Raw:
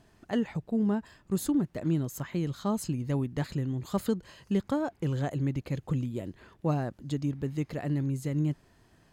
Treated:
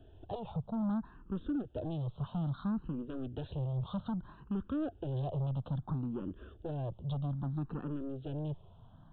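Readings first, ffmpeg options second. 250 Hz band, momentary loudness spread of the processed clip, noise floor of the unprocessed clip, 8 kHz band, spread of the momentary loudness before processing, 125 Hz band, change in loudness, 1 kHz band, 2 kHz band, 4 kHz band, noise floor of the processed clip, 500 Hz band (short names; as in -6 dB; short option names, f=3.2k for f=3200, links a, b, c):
-7.0 dB, 6 LU, -63 dBFS, under -35 dB, 5 LU, -5.0 dB, -6.5 dB, -6.0 dB, -14.0 dB, -9.5 dB, -57 dBFS, -8.0 dB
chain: -filter_complex "[0:a]lowshelf=f=97:g=12,acrossover=split=110|810[a][b][c];[a]acompressor=threshold=-45dB:ratio=4[d];[b]acompressor=threshold=-28dB:ratio=4[e];[c]acompressor=threshold=-42dB:ratio=4[f];[d][e][f]amix=inputs=3:normalize=0,aresample=8000,asoftclip=type=tanh:threshold=-33dB,aresample=44100,asuperstop=centerf=2100:order=4:qfactor=1.3,asplit=2[g][h];[h]afreqshift=0.61[i];[g][i]amix=inputs=2:normalize=1,volume=3.5dB"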